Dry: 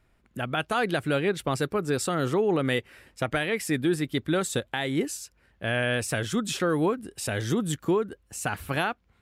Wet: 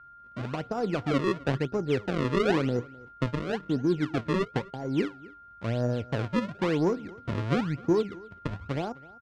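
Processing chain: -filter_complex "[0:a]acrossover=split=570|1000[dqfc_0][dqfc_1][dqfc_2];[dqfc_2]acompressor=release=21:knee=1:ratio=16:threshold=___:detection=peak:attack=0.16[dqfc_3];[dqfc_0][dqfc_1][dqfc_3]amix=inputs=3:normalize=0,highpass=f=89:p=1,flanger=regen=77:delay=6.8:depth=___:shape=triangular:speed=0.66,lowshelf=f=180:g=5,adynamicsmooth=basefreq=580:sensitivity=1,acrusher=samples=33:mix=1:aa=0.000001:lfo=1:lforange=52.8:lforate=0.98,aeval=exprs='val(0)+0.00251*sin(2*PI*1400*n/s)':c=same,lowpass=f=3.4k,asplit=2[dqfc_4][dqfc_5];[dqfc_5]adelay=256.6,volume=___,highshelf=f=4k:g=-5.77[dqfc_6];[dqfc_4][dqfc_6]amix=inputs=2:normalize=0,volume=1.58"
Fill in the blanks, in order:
0.01, 4.6, 0.0794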